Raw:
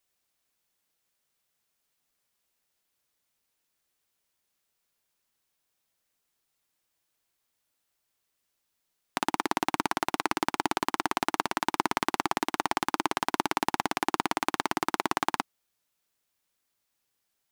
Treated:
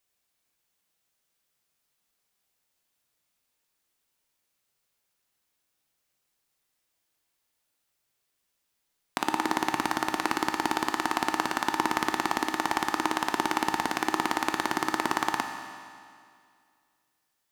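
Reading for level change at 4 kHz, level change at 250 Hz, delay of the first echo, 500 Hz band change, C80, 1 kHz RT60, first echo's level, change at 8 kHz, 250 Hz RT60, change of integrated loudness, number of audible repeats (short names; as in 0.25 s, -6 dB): +1.0 dB, +2.0 dB, none, +0.5 dB, 6.5 dB, 2.2 s, none, +1.0 dB, 2.2 s, +1.0 dB, none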